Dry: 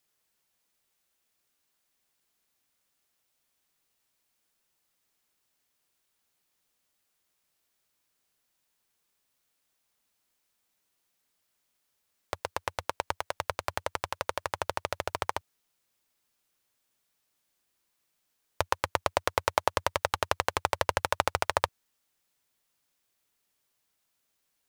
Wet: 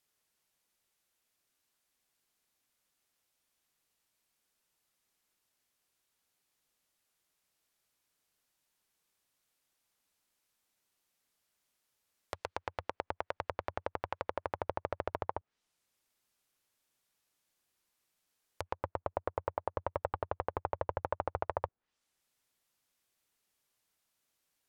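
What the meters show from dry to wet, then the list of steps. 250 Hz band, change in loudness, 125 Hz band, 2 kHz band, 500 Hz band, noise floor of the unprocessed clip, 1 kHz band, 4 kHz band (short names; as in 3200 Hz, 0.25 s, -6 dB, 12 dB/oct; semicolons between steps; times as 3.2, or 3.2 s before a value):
-3.0 dB, -8.0 dB, -4.0 dB, -13.0 dB, -4.5 dB, -78 dBFS, -7.5 dB, -19.5 dB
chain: treble ducked by the level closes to 870 Hz, closed at -31 dBFS; limiter -14.5 dBFS, peak gain reduction 9.5 dB; gain -2.5 dB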